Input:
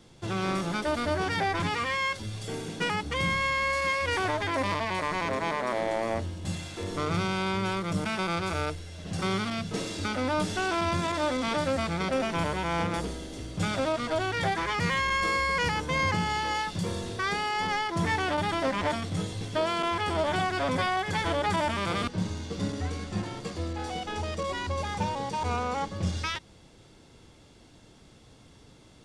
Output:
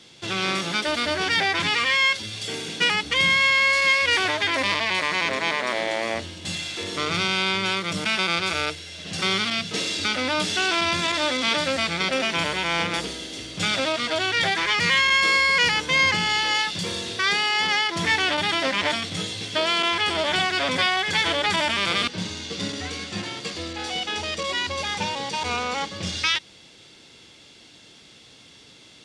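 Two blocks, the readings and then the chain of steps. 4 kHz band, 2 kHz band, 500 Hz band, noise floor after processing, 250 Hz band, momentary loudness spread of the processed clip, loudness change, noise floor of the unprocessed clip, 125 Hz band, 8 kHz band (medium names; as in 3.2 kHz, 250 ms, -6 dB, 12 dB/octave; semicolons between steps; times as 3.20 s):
+13.0 dB, +9.5 dB, +1.5 dB, -50 dBFS, 0.0 dB, 11 LU, +7.0 dB, -55 dBFS, -3.5 dB, +9.0 dB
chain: frequency weighting D; trim +2 dB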